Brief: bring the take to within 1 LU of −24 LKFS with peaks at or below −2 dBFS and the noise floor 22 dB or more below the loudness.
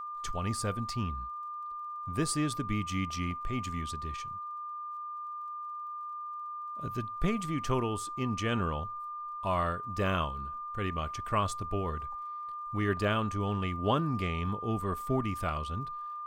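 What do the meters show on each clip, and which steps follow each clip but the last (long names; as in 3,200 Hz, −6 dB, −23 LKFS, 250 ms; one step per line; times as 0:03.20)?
crackle rate 26 per second; interfering tone 1,200 Hz; level of the tone −37 dBFS; integrated loudness −34.0 LKFS; sample peak −15.0 dBFS; target loudness −24.0 LKFS
→ click removal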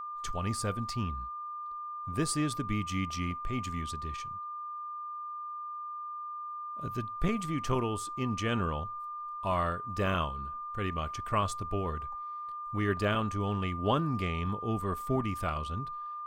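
crackle rate 0 per second; interfering tone 1,200 Hz; level of the tone −37 dBFS
→ notch filter 1,200 Hz, Q 30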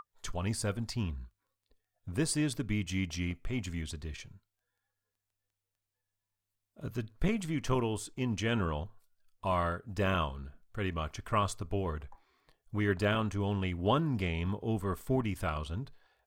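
interfering tone none found; integrated loudness −34.0 LKFS; sample peak −15.5 dBFS; target loudness −24.0 LKFS
→ level +10 dB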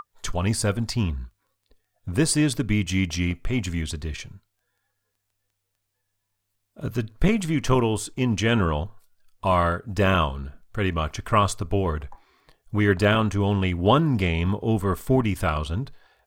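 integrated loudness −24.0 LKFS; sample peak −5.5 dBFS; background noise floor −78 dBFS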